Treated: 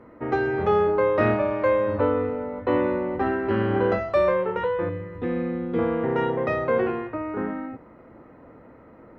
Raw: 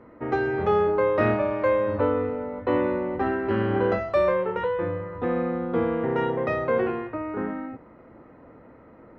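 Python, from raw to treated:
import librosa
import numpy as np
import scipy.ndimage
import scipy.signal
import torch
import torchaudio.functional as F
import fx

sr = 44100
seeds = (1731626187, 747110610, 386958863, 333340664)

y = fx.band_shelf(x, sr, hz=900.0, db=-9.0, octaves=1.7, at=(4.89, 5.79))
y = y * librosa.db_to_amplitude(1.0)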